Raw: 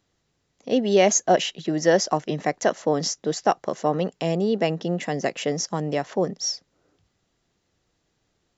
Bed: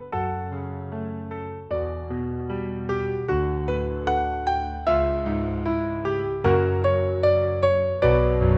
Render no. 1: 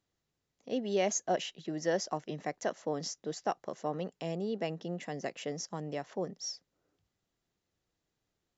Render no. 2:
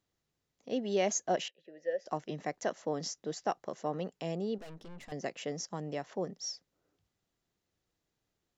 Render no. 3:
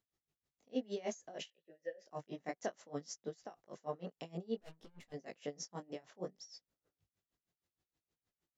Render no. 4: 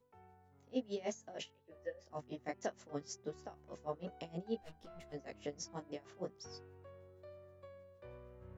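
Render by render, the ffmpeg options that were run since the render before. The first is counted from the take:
-af "volume=0.237"
-filter_complex "[0:a]asettb=1/sr,asplit=3[s0][s1][s2];[s0]atrim=end=1.484[s3];[s1]atrim=start=1.48:end=2.06,asetpts=PTS-STARTPTS,afade=t=in:d=0.004:c=qsin,afade=t=out:st=0.576:d=0.004:c=qsin,asplit=3[s4][s5][s6];[s4]bandpass=f=530:t=q:w=8,volume=1[s7];[s5]bandpass=f=1840:t=q:w=8,volume=0.501[s8];[s6]bandpass=f=2480:t=q:w=8,volume=0.355[s9];[s7][s8][s9]amix=inputs=3:normalize=0[s10];[s2]atrim=start=2.056[s11];[s3][s10]acrossfade=d=0.004:c1=hsin:c2=qsin[s12];[s12][s11]acrossfade=d=0.004:c1=qsin:c2=hsin,asettb=1/sr,asplit=3[s13][s14][s15];[s13]atrim=end=4.584[s16];[s14]atrim=start=4.58:end=5.12,asetpts=PTS-STARTPTS,afade=t=in:d=0.004:c=qsin,afade=t=out:st=0.536:d=0.004:c=qsin,aeval=exprs='(tanh(200*val(0)+0.8)-tanh(0.8))/200':c=same[s17];[s15]atrim=start=5.116[s18];[s16][s17]acrossfade=d=0.004:c1=hsin:c2=qsin[s19];[s19][s18]acrossfade=d=0.004:c1=qsin:c2=hsin"
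-af "flanger=delay=18:depth=5.4:speed=0.59,aeval=exprs='val(0)*pow(10,-23*(0.5-0.5*cos(2*PI*6.4*n/s))/20)':c=same"
-filter_complex "[1:a]volume=0.0158[s0];[0:a][s0]amix=inputs=2:normalize=0"

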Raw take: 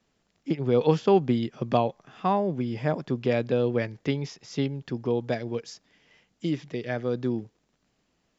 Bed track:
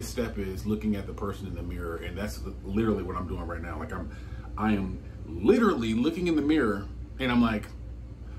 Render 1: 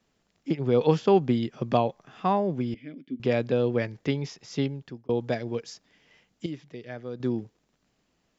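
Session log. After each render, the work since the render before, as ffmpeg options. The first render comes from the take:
-filter_complex "[0:a]asettb=1/sr,asplit=3[s0][s1][s2];[s0]atrim=end=2.744[s3];[s1]atrim=start=2.74:end=3.2,asetpts=PTS-STARTPTS,afade=t=in:d=0.004:c=qsin,afade=t=out:st=0.456:d=0.004:c=qsin,asplit=3[s4][s5][s6];[s4]bandpass=f=270:t=q:w=8,volume=1[s7];[s5]bandpass=f=2290:t=q:w=8,volume=0.501[s8];[s6]bandpass=f=3010:t=q:w=8,volume=0.355[s9];[s7][s8][s9]amix=inputs=3:normalize=0[s10];[s2]atrim=start=3.196[s11];[s3][s10]acrossfade=d=0.004:c1=hsin:c2=qsin[s12];[s12][s11]acrossfade=d=0.004:c1=qsin:c2=hsin,asplit=4[s13][s14][s15][s16];[s13]atrim=end=5.09,asetpts=PTS-STARTPTS,afade=t=out:st=4.66:d=0.43[s17];[s14]atrim=start=5.09:end=6.462,asetpts=PTS-STARTPTS,afade=t=in:d=0.004:c=hsin[s18];[s15]atrim=start=6.458:end=7.202,asetpts=PTS-STARTPTS,volume=0.376[s19];[s16]atrim=start=7.198[s20];[s17][s18]concat=n=2:v=0:a=1[s21];[s21][s19]acrossfade=d=0.004:c1=hsin:c2=hsin[s22];[s22][s20]acrossfade=d=0.004:c1=hsin:c2=hsin"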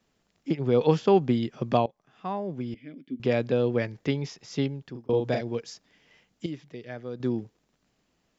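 -filter_complex "[0:a]asettb=1/sr,asplit=3[s0][s1][s2];[s0]atrim=end=4.914[s3];[s1]atrim=start=4.91:end=5.41,asetpts=PTS-STARTPTS,afade=t=in:d=0.004:c=qsin,afade=t=out:st=0.496:d=0.004:c=qsin,asplit=2[s4][s5];[s5]adelay=40,volume=0.668[s6];[s4][s6]amix=inputs=2:normalize=0,atrim=end_sample=22050[s7];[s2]atrim=start=5.406[s8];[s3][s7]acrossfade=d=0.004:c1=hsin:c2=qsin[s9];[s9][s8]acrossfade=d=0.004:c1=qsin:c2=hsin,asplit=2[s10][s11];[s10]atrim=end=1.86,asetpts=PTS-STARTPTS,afade=t=out:st=1.856:d=0.004:c=hsin:silence=0.105925[s12];[s11]atrim=start=1.86,asetpts=PTS-STARTPTS,afade=t=in:d=1.35:silence=0.105925[s13];[s12][s13]concat=n=2:v=0:a=1"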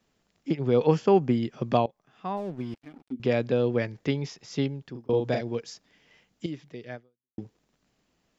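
-filter_complex "[0:a]asettb=1/sr,asplit=3[s0][s1][s2];[s0]atrim=end=0.824[s3];[s1]atrim=start=0.82:end=1.45,asetpts=PTS-STARTPTS,afade=t=in:d=0.004:c=qsin,afade=t=out:st=0.626:d=0.004:c=qsin,equalizer=f=3700:t=o:w=0.32:g=-11[s4];[s2]atrim=start=1.446[s5];[s3][s4]acrossfade=d=0.004:c1=hsin:c2=qsin[s6];[s6][s5]acrossfade=d=0.004:c1=qsin:c2=hsin,asplit=3[s7][s8][s9];[s7]afade=t=out:st=2.36:d=0.02[s10];[s8]aeval=exprs='sgn(val(0))*max(abs(val(0))-0.00376,0)':c=same,afade=t=in:st=2.36:d=0.02,afade=t=out:st=3.11:d=0.02[s11];[s9]afade=t=in:st=3.11:d=0.02[s12];[s10][s11][s12]amix=inputs=3:normalize=0,asplit=2[s13][s14];[s13]atrim=end=7.38,asetpts=PTS-STARTPTS,afade=t=out:st=6.95:d=0.43:c=exp[s15];[s14]atrim=start=7.38,asetpts=PTS-STARTPTS,afade=t=in:d=0.004:c=hsin[s16];[s15][s16]concat=n=2:v=0:a=1"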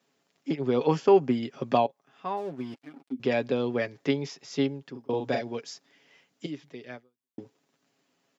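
-af "highpass=220,aecho=1:1:7.3:0.48"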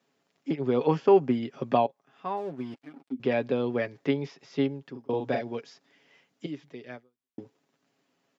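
-filter_complex "[0:a]acrossover=split=4300[s0][s1];[s1]acompressor=threshold=0.00126:ratio=4:attack=1:release=60[s2];[s0][s2]amix=inputs=2:normalize=0,highshelf=f=4000:g=-5.5"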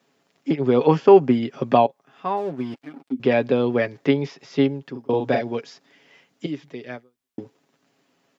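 -af "volume=2.37,alimiter=limit=0.794:level=0:latency=1"

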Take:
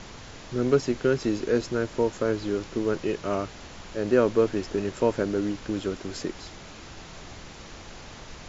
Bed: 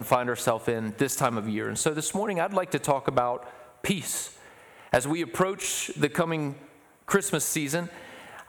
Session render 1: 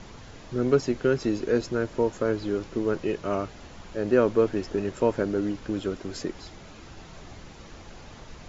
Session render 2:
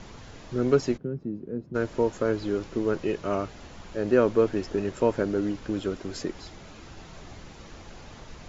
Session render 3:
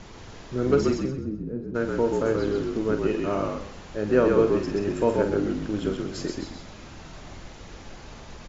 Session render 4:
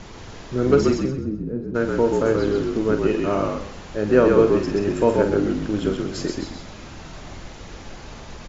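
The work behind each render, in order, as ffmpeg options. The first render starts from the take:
-af "afftdn=nr=6:nf=-44"
-filter_complex "[0:a]asplit=3[s0][s1][s2];[s0]afade=t=out:st=0.96:d=0.02[s3];[s1]bandpass=f=170:t=q:w=1.9,afade=t=in:st=0.96:d=0.02,afade=t=out:st=1.74:d=0.02[s4];[s2]afade=t=in:st=1.74:d=0.02[s5];[s3][s4][s5]amix=inputs=3:normalize=0"
-filter_complex "[0:a]asplit=2[s0][s1];[s1]adelay=47,volume=0.376[s2];[s0][s2]amix=inputs=2:normalize=0,asplit=2[s3][s4];[s4]asplit=4[s5][s6][s7][s8];[s5]adelay=129,afreqshift=-46,volume=0.668[s9];[s6]adelay=258,afreqshift=-92,volume=0.2[s10];[s7]adelay=387,afreqshift=-138,volume=0.0603[s11];[s8]adelay=516,afreqshift=-184,volume=0.018[s12];[s9][s10][s11][s12]amix=inputs=4:normalize=0[s13];[s3][s13]amix=inputs=2:normalize=0"
-af "volume=1.68"

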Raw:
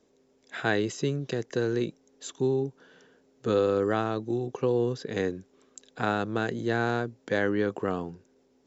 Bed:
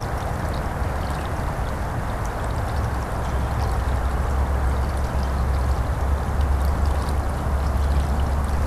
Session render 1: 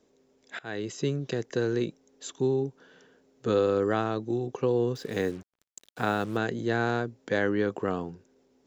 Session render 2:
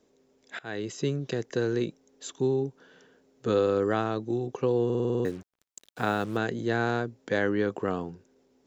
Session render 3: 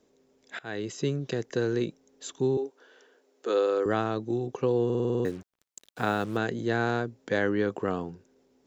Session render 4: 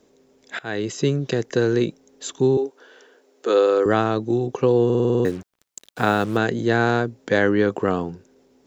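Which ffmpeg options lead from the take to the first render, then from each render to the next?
-filter_complex "[0:a]asettb=1/sr,asplit=3[s0][s1][s2];[s0]atrim=end=4.954[s3];[s1]atrim=start=4.95:end=6.37,asetpts=PTS-STARTPTS,afade=t=in:d=0.004:c=qsin,afade=t=out:st=1.416:d=0.004:c=qsin,acrusher=bits=7:mix=0:aa=0.5[s4];[s2]atrim=start=6.366[s5];[s3][s4]acrossfade=d=0.004:c1=hsin:c2=qsin[s6];[s6][s5]acrossfade=d=0.004:c1=qsin:c2=hsin,asplit=2[s7][s8];[s7]atrim=end=0.59,asetpts=PTS-STARTPTS,afade=t=out:st=0.586:d=0.004:c=hsin:silence=0.0630957[s9];[s8]atrim=start=0.59,asetpts=PTS-STARTPTS,afade=t=in:d=0.48:silence=0.0630957[s10];[s9][s10]concat=n=2:v=0:a=1"
-filter_complex "[0:a]asplit=9[s0][s1][s2][s3][s4][s5][s6][s7][s8];[s0]atrim=end=4.902[s9];[s1]atrim=start=4.848:end=4.902[s10];[s2]atrim=start=4.848:end=4.902[s11];[s3]atrim=start=4.848:end=4.902[s12];[s4]atrim=start=4.848:end=4.902[s13];[s5]atrim=start=4.848:end=4.902[s14];[s6]atrim=start=4.848:end=4.902[s15];[s7]atrim=start=4.848:end=4.902[s16];[s8]atrim=start=5.248[s17];[s9][s10]acrossfade=d=0.004:c1=hsin:c2=hsin[s18];[s18][s11]acrossfade=d=0.004:c1=hsin:c2=hsin[s19];[s19][s12]acrossfade=d=0.004:c1=hsin:c2=hsin[s20];[s20][s13]acrossfade=d=0.004:c1=hsin:c2=hsin[s21];[s21][s14]acrossfade=d=0.004:c1=hsin:c2=hsin[s22];[s22][s15]acrossfade=d=0.004:c1=hsin:c2=hsin[s23];[s23][s16]acrossfade=d=0.004:c1=hsin:c2=hsin[s24];[s24][s17]acrossfade=d=0.004:c1=hsin:c2=hsin"
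-filter_complex "[0:a]asettb=1/sr,asplit=3[s0][s1][s2];[s0]atrim=end=2.574[s3];[s1]atrim=start=2.57:end=3.86,asetpts=PTS-STARTPTS,afade=t=in:d=0.004:c=qsin,afade=t=out:st=1.286:d=0.004:c=qsin,highpass=f=330:w=0.5412,highpass=f=330:w=1.3066[s4];[s2]atrim=start=3.856[s5];[s3][s4]acrossfade=d=0.004:c1=hsin:c2=qsin[s6];[s6][s5]acrossfade=d=0.004:c1=qsin:c2=hsin"
-af "volume=2.51"

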